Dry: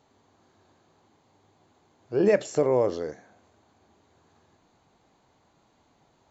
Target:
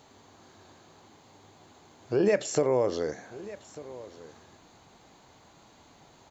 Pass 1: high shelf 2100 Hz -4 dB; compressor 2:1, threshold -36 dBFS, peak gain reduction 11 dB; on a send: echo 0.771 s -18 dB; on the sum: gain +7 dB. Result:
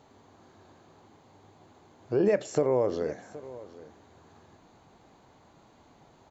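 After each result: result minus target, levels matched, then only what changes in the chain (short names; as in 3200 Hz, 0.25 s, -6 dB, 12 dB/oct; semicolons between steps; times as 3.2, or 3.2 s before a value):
4000 Hz band -7.5 dB; echo 0.424 s early
change: high shelf 2100 Hz +5.5 dB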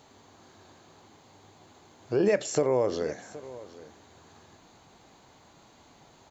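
echo 0.424 s early
change: echo 1.195 s -18 dB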